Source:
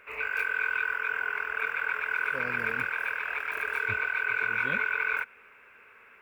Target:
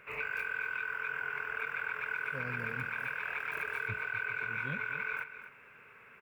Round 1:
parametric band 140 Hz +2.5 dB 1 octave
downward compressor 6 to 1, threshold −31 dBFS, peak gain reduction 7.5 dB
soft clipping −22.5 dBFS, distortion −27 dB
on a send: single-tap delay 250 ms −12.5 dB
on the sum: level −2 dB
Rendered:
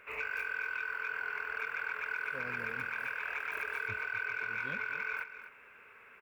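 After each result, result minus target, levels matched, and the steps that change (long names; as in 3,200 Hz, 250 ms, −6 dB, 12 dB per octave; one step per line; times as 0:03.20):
soft clipping: distortion +18 dB; 125 Hz band −8.0 dB
change: soft clipping −13 dBFS, distortion −45 dB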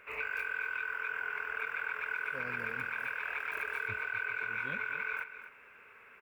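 125 Hz band −8.0 dB
change: parametric band 140 Hz +14 dB 1 octave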